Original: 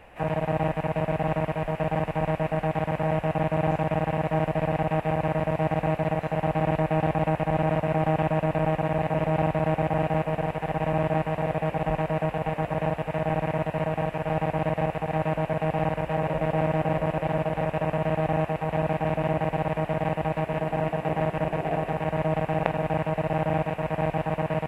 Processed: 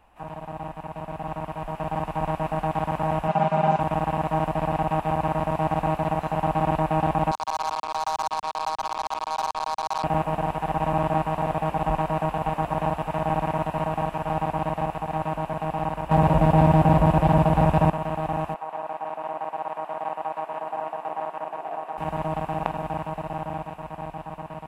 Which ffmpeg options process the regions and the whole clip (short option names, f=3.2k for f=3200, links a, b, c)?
-filter_complex "[0:a]asettb=1/sr,asplit=3[a][b][c];[a]atrim=end=3.284[d];[b]atrim=start=3.28:end=3.8,asetpts=PTS-STARTPTS,afade=t=in:d=0.004:c=qsin,afade=t=out:st=0.516:d=0.004:c=qsin,highpass=130,lowpass=6.8k,aecho=1:1:5:0.83,atrim=end_sample=22932[e];[c]atrim=start=3.796[f];[d][e]acrossfade=d=0.004:c1=hsin:c2=qsin[g];[g][f]acrossfade=d=0.004:c1=qsin:c2=hsin,asettb=1/sr,asplit=3[h][i][j];[h]atrim=end=7.314[k];[i]atrim=start=7.31:end=10.04,asetpts=PTS-STARTPTS,afade=t=in:d=0.004:c=qsin,afade=t=out:st=2.726:d=0.004:c=qsin,asuperpass=centerf=1100:order=4:qfactor=1.5,acrusher=bits=4:mix=0:aa=0.5[l];[j]atrim=start=10.036[m];[k][l]acrossfade=d=0.004:c1=hsin:c2=qsin[n];[n][m]acrossfade=d=0.004:c1=qsin:c2=hsin,asettb=1/sr,asplit=3[o][p][q];[o]atrim=end=16.114[r];[p]atrim=start=16.11:end=17.9,asetpts=PTS-STARTPTS,afade=t=in:d=0.004:c=qsin,afade=t=out:st=1.786:d=0.004:c=qsin,highpass=47,lowshelf=f=240:g=11,acontrast=85[s];[q]atrim=start=17.896[t];[r][s]acrossfade=d=0.004:c1=hsin:c2=qsin[u];[u][t]acrossfade=d=0.004:c1=qsin:c2=hsin,asettb=1/sr,asplit=3[v][w][x];[v]atrim=end=18.544[y];[w]atrim=start=18.54:end=21.98,asetpts=PTS-STARTPTS,afade=t=in:d=0.004:c=qsin,afade=t=out:st=3.436:d=0.004:c=qsin,highpass=590,highshelf=f=2k:g=-11.5[z];[x]atrim=start=21.976[aa];[y][z]acrossfade=d=0.004:c1=hsin:c2=qsin[ab];[ab][aa]acrossfade=d=0.004:c1=qsin:c2=hsin,equalizer=f=125:t=o:w=1:g=-9,equalizer=f=500:t=o:w=1:g=-11,equalizer=f=1k:t=o:w=1:g=6,equalizer=f=2k:t=o:w=1:g=-11,dynaudnorm=f=170:g=21:m=11.5dB,volume=-5dB"